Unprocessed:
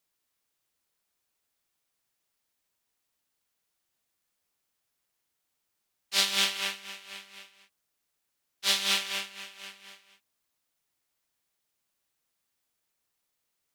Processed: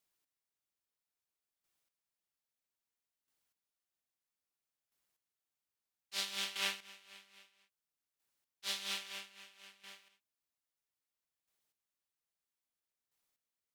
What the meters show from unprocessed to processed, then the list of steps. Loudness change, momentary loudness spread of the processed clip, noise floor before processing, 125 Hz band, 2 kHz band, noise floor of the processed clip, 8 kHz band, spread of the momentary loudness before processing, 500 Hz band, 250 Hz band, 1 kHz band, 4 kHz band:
-12.0 dB, 19 LU, -81 dBFS, n/a, -10.5 dB, under -85 dBFS, -12.0 dB, 19 LU, -11.0 dB, -11.5 dB, -11.0 dB, -12.0 dB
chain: chopper 0.61 Hz, depth 65%, duty 15%; gain -4 dB

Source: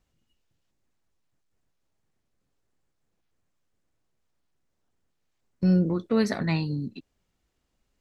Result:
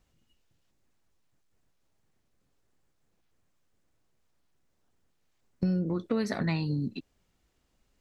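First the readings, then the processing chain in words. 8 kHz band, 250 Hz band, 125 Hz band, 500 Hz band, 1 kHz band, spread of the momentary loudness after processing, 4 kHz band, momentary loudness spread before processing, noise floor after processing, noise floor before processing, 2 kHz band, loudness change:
n/a, -5.0 dB, -4.5 dB, -5.0 dB, -3.5 dB, 6 LU, -4.0 dB, 10 LU, -74 dBFS, -77 dBFS, -3.5 dB, -5.0 dB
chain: compressor 5:1, threshold -29 dBFS, peak gain reduction 11 dB; gain +3 dB

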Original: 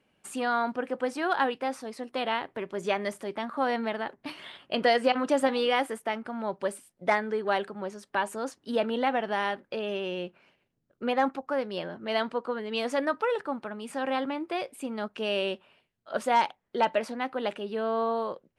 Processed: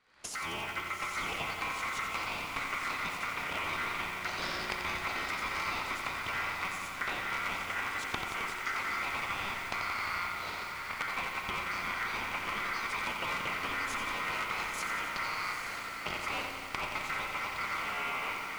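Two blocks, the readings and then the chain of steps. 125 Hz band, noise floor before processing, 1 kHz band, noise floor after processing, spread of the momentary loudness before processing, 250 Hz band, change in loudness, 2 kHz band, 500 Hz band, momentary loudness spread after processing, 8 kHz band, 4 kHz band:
0.0 dB, -75 dBFS, -5.5 dB, -41 dBFS, 10 LU, -14.5 dB, -4.5 dB, +1.5 dB, -17.0 dB, 3 LU, +3.5 dB, -2.0 dB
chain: cycle switcher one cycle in 3, inverted; recorder AGC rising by 64 dB/s; bell 7300 Hz +5 dB 0.69 oct; compressor 10:1, threshold -31 dBFS, peak gain reduction 18 dB; ring modulator 1700 Hz; air absorption 56 m; diffused feedback echo 0.845 s, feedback 57%, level -6 dB; spring tank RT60 3 s, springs 33 ms, chirp 70 ms, DRR 6 dB; lo-fi delay 88 ms, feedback 80%, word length 8-bit, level -6.5 dB

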